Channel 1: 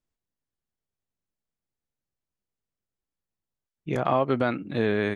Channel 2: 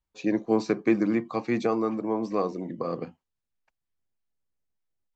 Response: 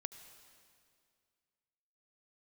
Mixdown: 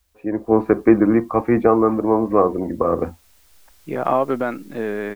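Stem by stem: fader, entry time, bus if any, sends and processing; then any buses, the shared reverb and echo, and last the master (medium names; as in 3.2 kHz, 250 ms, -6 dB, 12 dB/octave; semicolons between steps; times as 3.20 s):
-7.0 dB, 0.00 s, no send, high-pass 210 Hz 12 dB/octave; low-pass 2 kHz; auto duck -8 dB, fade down 0.90 s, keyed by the second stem
+1.5 dB, 0.00 s, no send, low-pass 1.7 kHz 24 dB/octave; resonant low shelf 100 Hz +13 dB, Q 3; word length cut 12-bit, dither triangular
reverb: none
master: level rider gain up to 16 dB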